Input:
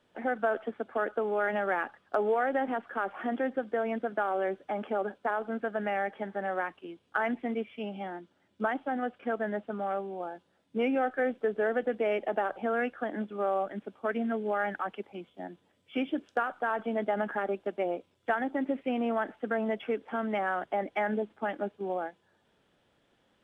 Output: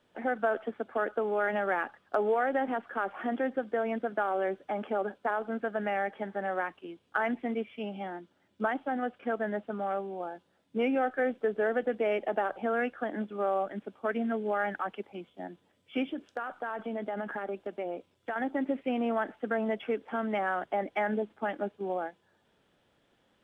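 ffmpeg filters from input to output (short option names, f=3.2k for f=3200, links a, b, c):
-filter_complex "[0:a]asettb=1/sr,asplit=3[a][b][c];[a]atrim=end=16.074[d];[b]atrim=start=16.07:end=18.36,asetpts=PTS-STARTPTS,afade=t=in:d=0.004:c=qsin,afade=t=out:st=2.286:d=0.004:c=qsin,acompressor=threshold=-32dB:ratio=3:attack=3.2:release=140:knee=1:detection=peak[e];[c]atrim=start=18.356[f];[d][e]acrossfade=d=0.004:c1=hsin:c2=qsin[g];[g][f]acrossfade=d=0.004:c1=qsin:c2=hsin"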